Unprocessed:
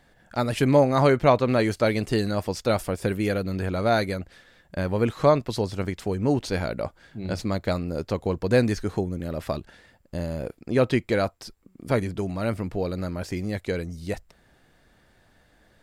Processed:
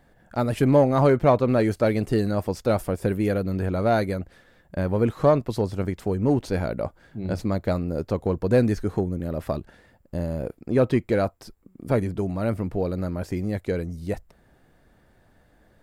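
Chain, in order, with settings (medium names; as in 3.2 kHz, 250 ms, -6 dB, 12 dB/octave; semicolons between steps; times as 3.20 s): peaking EQ 4.3 kHz -9 dB 2.9 oct; in parallel at -10 dB: hard clipper -19.5 dBFS, distortion -10 dB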